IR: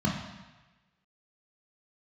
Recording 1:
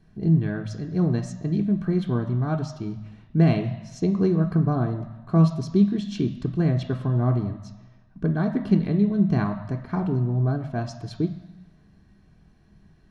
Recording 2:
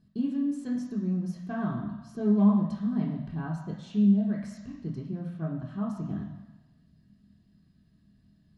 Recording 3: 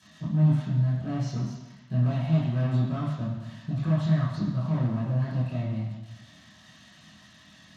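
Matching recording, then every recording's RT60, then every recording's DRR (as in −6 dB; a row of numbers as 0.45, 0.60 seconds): 2; 1.2, 1.2, 1.2 seconds; 6.0, −2.0, −11.0 decibels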